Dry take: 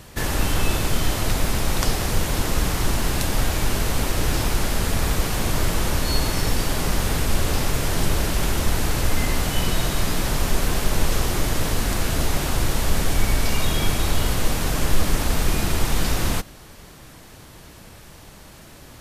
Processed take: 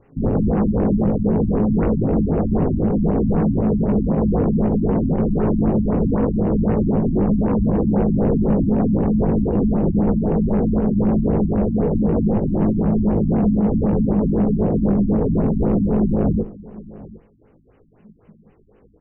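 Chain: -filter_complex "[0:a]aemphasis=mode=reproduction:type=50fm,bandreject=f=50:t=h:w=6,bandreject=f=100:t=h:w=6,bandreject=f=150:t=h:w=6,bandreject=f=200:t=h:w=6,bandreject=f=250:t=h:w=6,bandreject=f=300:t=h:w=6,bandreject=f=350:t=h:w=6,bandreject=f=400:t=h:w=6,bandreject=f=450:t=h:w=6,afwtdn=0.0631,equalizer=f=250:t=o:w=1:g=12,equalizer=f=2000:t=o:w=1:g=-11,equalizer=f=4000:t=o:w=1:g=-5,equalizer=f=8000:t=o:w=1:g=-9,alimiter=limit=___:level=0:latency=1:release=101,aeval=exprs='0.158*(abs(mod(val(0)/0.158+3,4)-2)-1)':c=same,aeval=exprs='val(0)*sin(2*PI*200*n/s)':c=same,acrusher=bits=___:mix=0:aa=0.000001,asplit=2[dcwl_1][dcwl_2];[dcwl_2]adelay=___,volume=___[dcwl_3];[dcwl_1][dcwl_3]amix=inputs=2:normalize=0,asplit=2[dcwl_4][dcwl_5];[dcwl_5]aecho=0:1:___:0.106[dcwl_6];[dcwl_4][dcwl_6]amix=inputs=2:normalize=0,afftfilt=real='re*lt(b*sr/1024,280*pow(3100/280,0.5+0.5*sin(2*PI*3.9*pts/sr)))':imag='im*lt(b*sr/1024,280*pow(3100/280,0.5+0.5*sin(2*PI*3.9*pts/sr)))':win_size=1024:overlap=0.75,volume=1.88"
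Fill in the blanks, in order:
0.335, 10, 19, 0.668, 748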